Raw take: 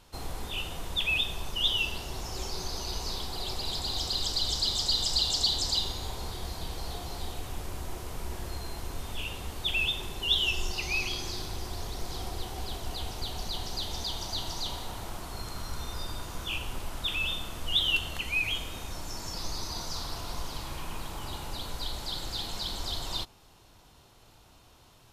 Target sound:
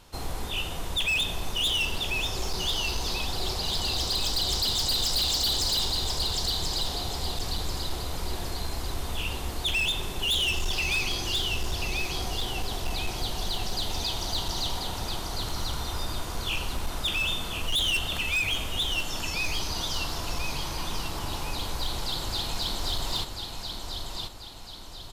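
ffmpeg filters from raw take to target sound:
-af "aecho=1:1:1038|2076|3114|4152|5190:0.501|0.216|0.0927|0.0398|0.0171,volume=21.1,asoftclip=hard,volume=0.0473,volume=1.58"

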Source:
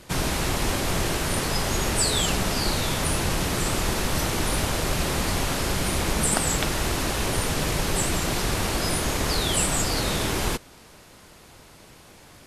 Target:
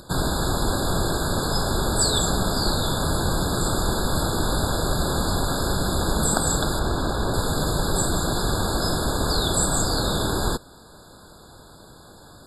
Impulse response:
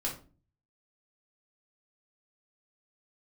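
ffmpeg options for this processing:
-filter_complex "[0:a]asettb=1/sr,asplit=3[s0][s1][s2];[s0]atrim=end=6.794[s3];[s1]atrim=start=6.79:end=7.34,asetpts=PTS-STARTPTS,afade=t=in:d=0.004:c=qsin,afade=t=out:st=0.546:d=0.004:c=qsin,aemphasis=mode=reproduction:type=cd[s4];[s2]atrim=start=7.336[s5];[s3][s4]acrossfade=d=0.004:c1=hsin:c2=qsin[s6];[s6][s5]acrossfade=d=0.004:c1=qsin:c2=hsin,acompressor=mode=upward:threshold=0.00631:ratio=2.5,afftfilt=real='re*eq(mod(floor(b*sr/1024/1700),2),0)':imag='im*eq(mod(floor(b*sr/1024/1700),2),0)':win_size=1024:overlap=0.75,volume=1.33"

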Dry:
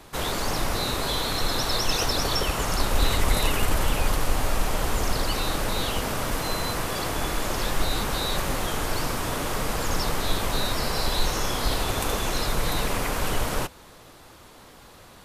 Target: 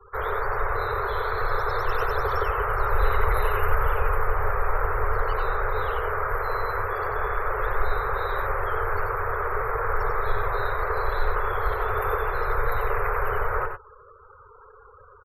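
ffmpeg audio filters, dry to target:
-filter_complex "[0:a]firequalizer=gain_entry='entry(110,0);entry(160,-29);entry(290,-26);entry(410,7);entry(650,-3);entry(1300,9);entry(2700,-11);entry(6400,-24);entry(12000,-4)':delay=0.05:min_phase=1,afftfilt=real='re*gte(hypot(re,im),0.0126)':imag='im*gte(hypot(re,im),0.0126)':win_size=1024:overlap=0.75,asplit=2[s0][s1];[s1]aecho=0:1:91|102:0.447|0.251[s2];[s0][s2]amix=inputs=2:normalize=0,volume=0.891"

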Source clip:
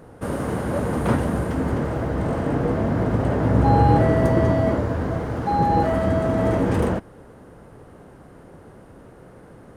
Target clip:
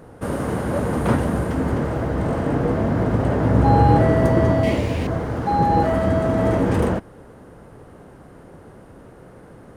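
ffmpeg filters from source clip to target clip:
-filter_complex "[0:a]asettb=1/sr,asplit=3[s0][s1][s2];[s0]atrim=end=4.634[s3];[s1]atrim=start=4.63:end=5.07,asetpts=PTS-STARTPTS,afade=t=in:d=0.004:c=qsin,afade=t=out:st=0.436:d=0.004:c=qsin,highshelf=f=1900:t=q:w=3:g=8[s4];[s2]atrim=start=5.066[s5];[s3][s4]acrossfade=d=0.004:c1=hsin:c2=qsin[s6];[s6][s5]acrossfade=d=0.004:c1=qsin:c2=hsin,volume=1.19"

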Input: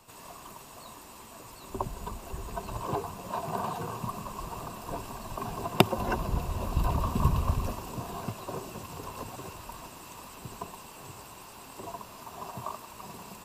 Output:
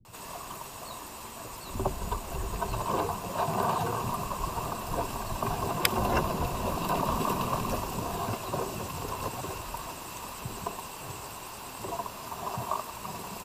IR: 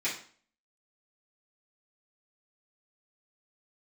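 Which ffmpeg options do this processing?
-filter_complex "[0:a]acrossover=split=240[s0][s1];[s1]adelay=50[s2];[s0][s2]amix=inputs=2:normalize=0,afftfilt=real='re*lt(hypot(re,im),0.2)':imag='im*lt(hypot(re,im),0.2)':win_size=1024:overlap=0.75,volume=2"

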